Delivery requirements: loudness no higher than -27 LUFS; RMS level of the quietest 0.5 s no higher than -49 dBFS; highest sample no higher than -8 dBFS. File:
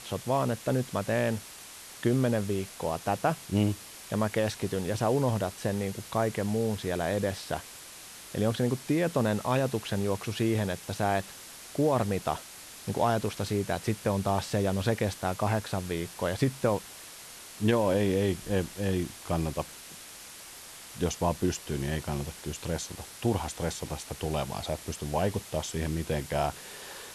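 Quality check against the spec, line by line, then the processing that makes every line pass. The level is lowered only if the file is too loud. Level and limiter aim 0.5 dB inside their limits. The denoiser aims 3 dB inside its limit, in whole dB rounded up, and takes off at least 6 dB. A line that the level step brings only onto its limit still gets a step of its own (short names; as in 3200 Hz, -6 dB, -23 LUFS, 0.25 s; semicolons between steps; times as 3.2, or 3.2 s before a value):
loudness -30.0 LUFS: OK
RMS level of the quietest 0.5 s -47 dBFS: fail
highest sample -14.0 dBFS: OK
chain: denoiser 6 dB, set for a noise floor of -47 dBFS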